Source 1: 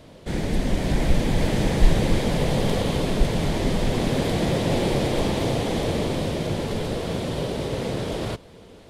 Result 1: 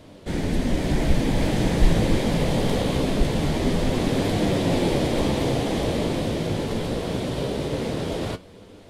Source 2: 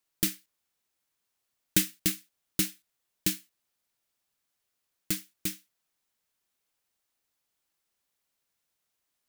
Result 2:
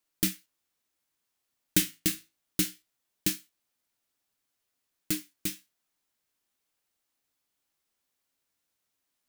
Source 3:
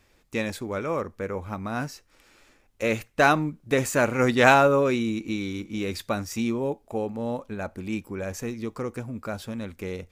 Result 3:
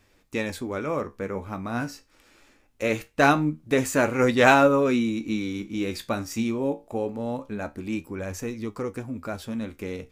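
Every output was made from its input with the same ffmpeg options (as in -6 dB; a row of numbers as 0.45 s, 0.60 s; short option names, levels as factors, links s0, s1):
-af "equalizer=f=280:t=o:w=0.45:g=4,flanger=delay=9.6:depth=9.2:regen=62:speed=0.23:shape=triangular,volume=1.58"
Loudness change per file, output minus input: +0.5 LU, 0.0 LU, +0.5 LU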